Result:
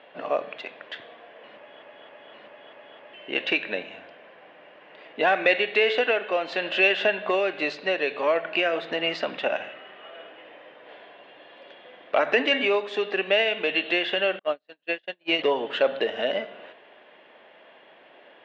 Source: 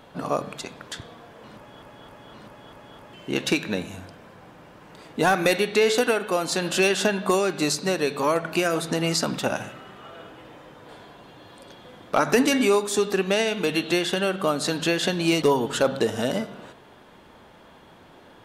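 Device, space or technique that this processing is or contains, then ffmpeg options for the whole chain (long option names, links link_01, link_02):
phone earpiece: -filter_complex "[0:a]asettb=1/sr,asplit=3[link_01][link_02][link_03];[link_01]atrim=end=14.394[link_04];[link_02]atrim=start=14.39:end=15.39,asetpts=PTS-STARTPTS,afade=type=in:duration=0.004:curve=qsin,afade=type=out:start_time=0.996:duration=0.004:curve=qsin,agate=range=-47dB:threshold=-20dB:ratio=16:detection=peak[link_05];[link_03]atrim=start=15.386[link_06];[link_04][link_05]acrossfade=duration=0.004:curve1=hsin:curve2=qsin[link_07];[link_07][link_06]acrossfade=duration=0.004:curve1=qsin:curve2=hsin,highpass=470,equalizer=frequency=610:width_type=q:width=4:gain=5,equalizer=frequency=920:width_type=q:width=4:gain=-5,equalizer=frequency=1300:width_type=q:width=4:gain=-6,equalizer=frequency=1900:width_type=q:width=4:gain=5,equalizer=frequency=2800:width_type=q:width=4:gain=6,lowpass=frequency=3200:width=0.5412,lowpass=frequency=3200:width=1.3066"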